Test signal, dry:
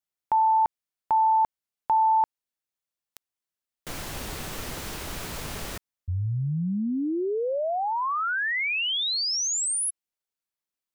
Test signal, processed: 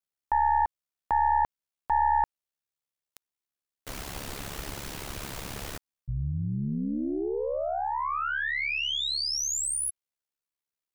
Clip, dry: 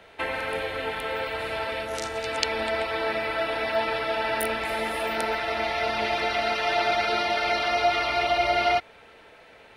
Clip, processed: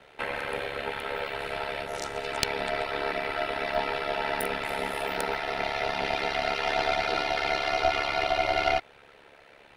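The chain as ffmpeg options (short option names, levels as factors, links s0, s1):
-af "aeval=exprs='val(0)*sin(2*PI*35*n/s)':c=same,aeval=exprs='0.335*(cos(1*acos(clip(val(0)/0.335,-1,1)))-cos(1*PI/2))+0.119*(cos(2*acos(clip(val(0)/0.335,-1,1)))-cos(2*PI/2))':c=same"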